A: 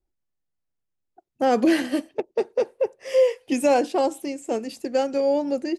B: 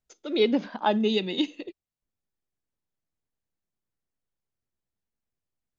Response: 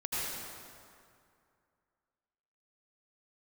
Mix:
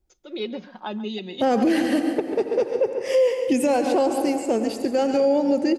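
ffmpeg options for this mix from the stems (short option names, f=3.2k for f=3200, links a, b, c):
-filter_complex "[0:a]equalizer=f=87:t=o:w=3:g=7,volume=3dB,asplit=3[a][b][c];[b]volume=-14.5dB[d];[c]volume=-11dB[e];[1:a]aecho=1:1:5.5:0.49,volume=-7dB,asplit=2[f][g];[g]volume=-16.5dB[h];[2:a]atrim=start_sample=2205[i];[d][i]afir=irnorm=-1:irlink=0[j];[e][h]amix=inputs=2:normalize=0,aecho=0:1:138:1[k];[a][f][j][k]amix=inputs=4:normalize=0,alimiter=limit=-12dB:level=0:latency=1:release=111"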